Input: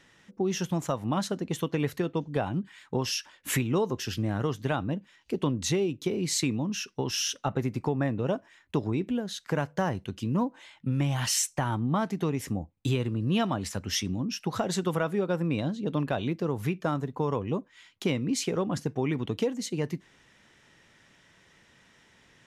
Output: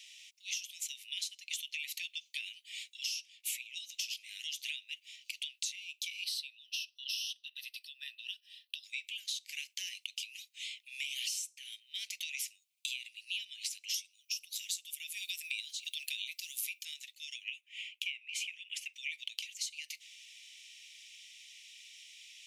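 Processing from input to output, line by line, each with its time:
0:06.24–0:08.84: phaser with its sweep stopped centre 1,500 Hz, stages 8
0:13.94–0:16.85: RIAA equalisation recording
0:17.48–0:18.94: high shelf with overshoot 3,400 Hz −7 dB, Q 3
whole clip: Butterworth high-pass 2,300 Hz 72 dB per octave; downward compressor 16 to 1, threshold −47 dBFS; level +11.5 dB

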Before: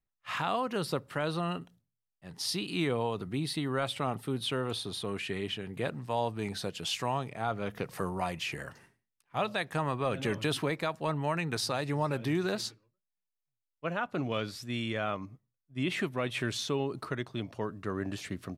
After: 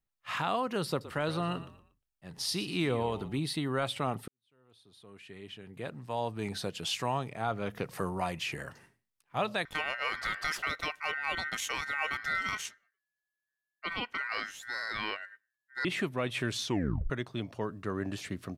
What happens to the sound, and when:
0:00.89–0:03.40: echo with shifted repeats 118 ms, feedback 33%, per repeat −43 Hz, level −14.5 dB
0:04.28–0:06.52: fade in quadratic
0:09.65–0:15.85: ring modulation 1,700 Hz
0:16.65: tape stop 0.45 s

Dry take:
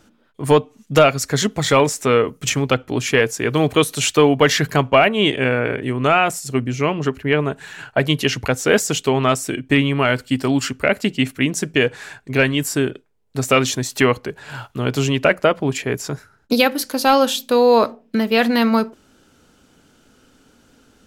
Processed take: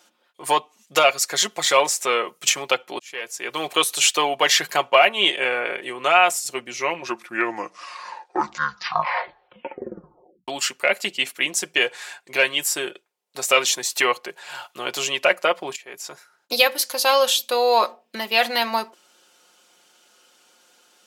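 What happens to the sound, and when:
0:02.99–0:03.78: fade in
0:06.62: tape stop 3.86 s
0:15.76–0:16.73: fade in equal-power, from −22.5 dB
whole clip: high-pass filter 770 Hz 12 dB per octave; parametric band 1,500 Hz −6 dB 0.88 octaves; comb filter 5.6 ms, depth 55%; level +2 dB

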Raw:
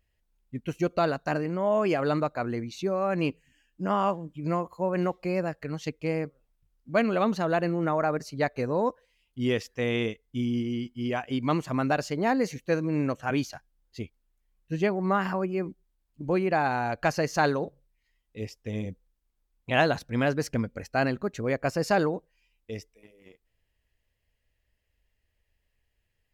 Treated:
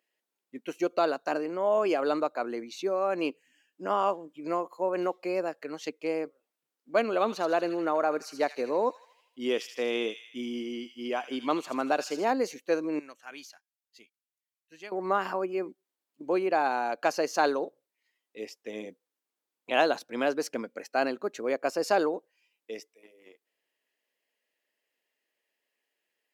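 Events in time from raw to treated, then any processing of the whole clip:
0:07.11–0:12.25: delay with a high-pass on its return 79 ms, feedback 55%, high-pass 2,500 Hz, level −6.5 dB
0:12.99–0:14.92: guitar amp tone stack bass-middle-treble 5-5-5
whole clip: high-pass filter 290 Hz 24 dB per octave; dynamic equaliser 1,900 Hz, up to −6 dB, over −47 dBFS, Q 2.8

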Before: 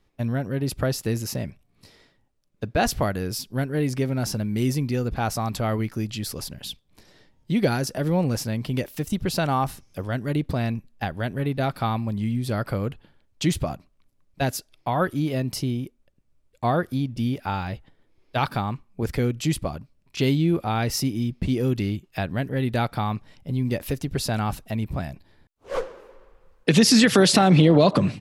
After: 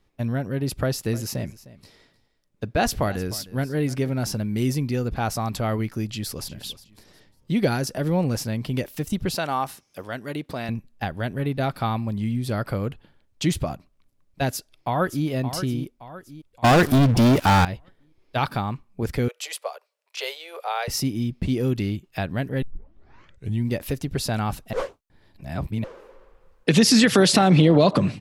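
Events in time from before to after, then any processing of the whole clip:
0:00.81–0:04.09: single-tap delay 307 ms −18 dB
0:06.07–0:06.51: delay throw 360 ms, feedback 30%, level −16 dB
0:09.35–0:10.69: high-pass filter 460 Hz 6 dB per octave
0:14.49–0:15.27: delay throw 570 ms, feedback 45%, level −10.5 dB
0:16.64–0:17.65: leveller curve on the samples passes 5
0:19.28–0:20.88: Butterworth high-pass 450 Hz 72 dB per octave
0:22.62: tape start 1.08 s
0:24.73–0:25.84: reverse

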